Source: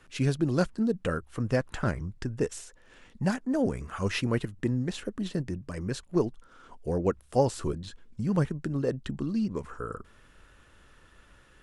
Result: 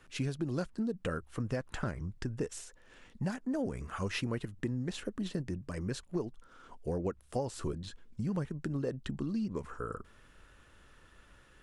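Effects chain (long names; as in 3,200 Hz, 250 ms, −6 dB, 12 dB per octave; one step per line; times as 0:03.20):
downward compressor 6 to 1, threshold −28 dBFS, peak gain reduction 10.5 dB
level −2.5 dB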